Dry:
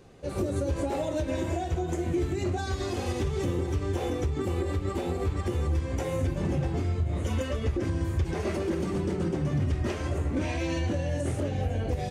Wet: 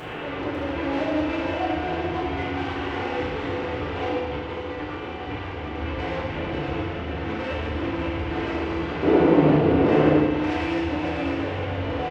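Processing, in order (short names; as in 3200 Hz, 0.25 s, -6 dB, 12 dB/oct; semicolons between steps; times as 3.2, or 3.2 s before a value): delta modulation 16 kbps, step -32.5 dBFS; soft clip -31 dBFS, distortion -9 dB; low shelf 240 Hz -10.5 dB; echo 0.549 s -5.5 dB; 4.18–5.74 negative-ratio compressor -42 dBFS, ratio -1; 9.03–10.2 bell 380 Hz +14 dB 2.8 oct; FDN reverb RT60 1.4 s, low-frequency decay 0.85×, high-frequency decay 0.95×, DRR -5 dB; gain +4 dB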